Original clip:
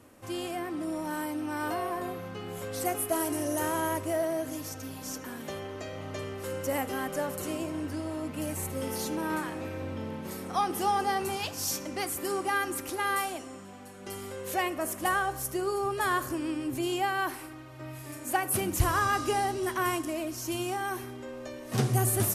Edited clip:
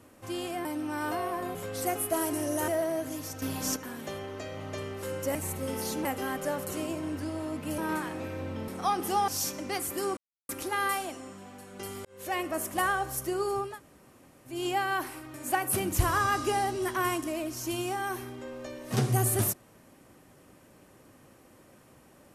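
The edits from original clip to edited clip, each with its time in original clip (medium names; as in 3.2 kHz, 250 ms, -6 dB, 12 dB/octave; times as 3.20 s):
0.65–1.24 s: delete
2.14–2.54 s: delete
3.67–4.09 s: delete
4.83–5.17 s: gain +7 dB
8.49–9.19 s: move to 6.76 s
10.09–10.39 s: delete
10.99–11.55 s: delete
12.44–12.76 s: mute
14.32–14.71 s: fade in
15.95–16.82 s: room tone, crossfade 0.24 s
17.61–18.15 s: delete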